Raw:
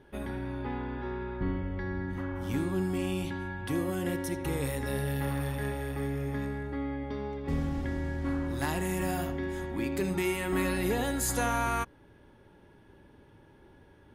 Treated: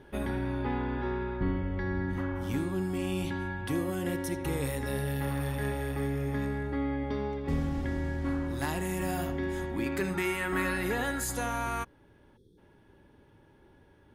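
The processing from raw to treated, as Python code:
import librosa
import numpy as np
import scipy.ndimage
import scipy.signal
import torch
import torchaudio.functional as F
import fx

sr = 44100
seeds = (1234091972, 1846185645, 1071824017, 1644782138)

y = fx.rider(x, sr, range_db=4, speed_s=0.5)
y = fx.peak_eq(y, sr, hz=1500.0, db=9.5, octaves=1.1, at=(9.86, 11.24))
y = fx.spec_box(y, sr, start_s=12.37, length_s=0.21, low_hz=520.0, high_hz=3200.0, gain_db=-28)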